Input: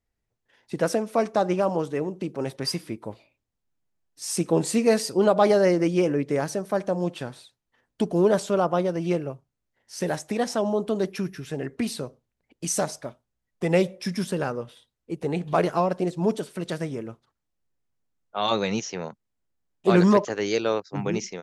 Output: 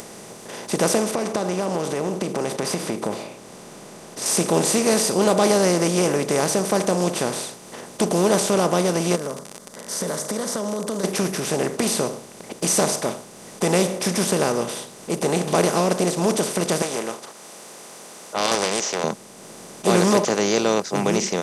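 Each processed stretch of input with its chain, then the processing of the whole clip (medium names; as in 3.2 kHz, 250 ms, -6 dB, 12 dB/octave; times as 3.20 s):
1.11–4.26 s: low-pass 2.3 kHz 6 dB/octave + compression 5:1, threshold -32 dBFS
9.15–11.03 s: compression 3:1, threshold -40 dBFS + static phaser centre 520 Hz, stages 8 + crackle 59 per s -54 dBFS
16.82–19.04 s: high-pass 720 Hz + loudspeaker Doppler distortion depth 0.28 ms
whole clip: spectral levelling over time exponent 0.4; treble shelf 5 kHz +11.5 dB; upward compressor, threshold -30 dBFS; trim -4 dB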